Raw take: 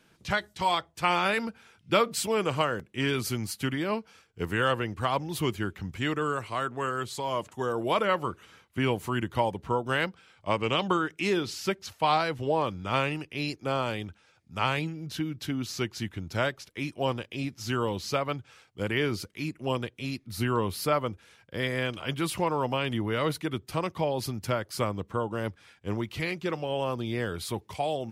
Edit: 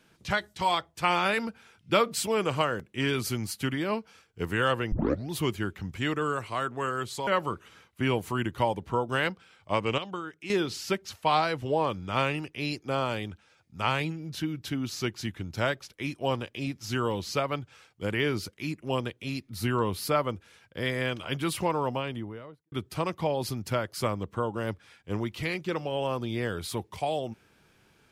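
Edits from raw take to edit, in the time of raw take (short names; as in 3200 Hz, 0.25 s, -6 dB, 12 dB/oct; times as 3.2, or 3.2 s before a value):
4.92 tape start 0.38 s
7.27–8.04 cut
10.75–11.27 gain -10 dB
22.45–23.49 studio fade out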